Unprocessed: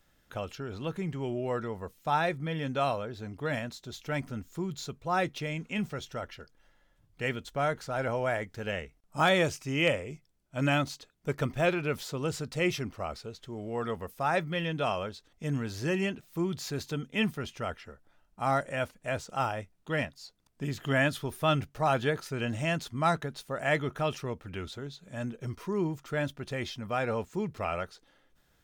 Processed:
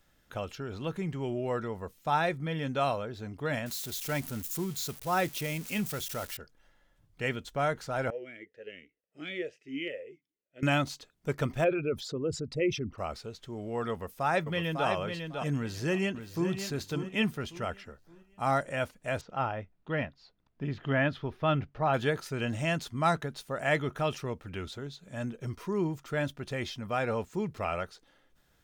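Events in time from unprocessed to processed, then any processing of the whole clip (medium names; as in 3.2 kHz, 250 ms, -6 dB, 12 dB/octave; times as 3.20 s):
3.66–6.37 s: zero-crossing glitches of -31 dBFS
8.10–10.63 s: talking filter e-i 2.1 Hz
11.64–12.98 s: resonances exaggerated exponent 2
13.91–14.88 s: echo throw 550 ms, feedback 20%, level -6 dB
15.57–16.51 s: echo throw 570 ms, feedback 35%, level -9 dB
19.21–21.94 s: distance through air 270 m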